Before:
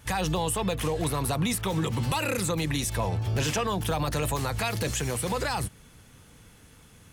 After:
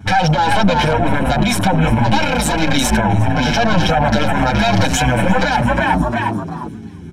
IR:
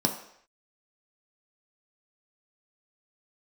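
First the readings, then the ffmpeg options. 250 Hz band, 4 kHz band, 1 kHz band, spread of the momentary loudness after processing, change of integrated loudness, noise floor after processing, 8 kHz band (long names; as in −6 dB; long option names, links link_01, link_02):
+15.0 dB, +12.5 dB, +16.5 dB, 5 LU, +12.5 dB, −30 dBFS, +6.0 dB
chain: -filter_complex "[0:a]highpass=100,aeval=exprs='0.188*(cos(1*acos(clip(val(0)/0.188,-1,1)))-cos(1*PI/2))+0.075*(cos(4*acos(clip(val(0)/0.188,-1,1)))-cos(4*PI/2))+0.0168*(cos(5*acos(clip(val(0)/0.188,-1,1)))-cos(5*PI/2))':channel_layout=same,aecho=1:1:1.3:0.9,adynamicsmooth=sensitivity=5:basefreq=4700,asplit=6[link_01][link_02][link_03][link_04][link_05][link_06];[link_02]adelay=352,afreqshift=55,volume=-8dB[link_07];[link_03]adelay=704,afreqshift=110,volume=-16dB[link_08];[link_04]adelay=1056,afreqshift=165,volume=-23.9dB[link_09];[link_05]adelay=1408,afreqshift=220,volume=-31.9dB[link_10];[link_06]adelay=1760,afreqshift=275,volume=-39.8dB[link_11];[link_01][link_07][link_08][link_09][link_10][link_11]amix=inputs=6:normalize=0,asplit=2[link_12][link_13];[1:a]atrim=start_sample=2205,highshelf=frequency=3900:gain=11[link_14];[link_13][link_14]afir=irnorm=-1:irlink=0,volume=-22.5dB[link_15];[link_12][link_15]amix=inputs=2:normalize=0,acompressor=threshold=-27dB:ratio=3,afwtdn=0.01,alimiter=level_in=22dB:limit=-1dB:release=50:level=0:latency=1,asplit=2[link_16][link_17];[link_17]adelay=6.9,afreqshift=-1.9[link_18];[link_16][link_18]amix=inputs=2:normalize=1,volume=-1dB"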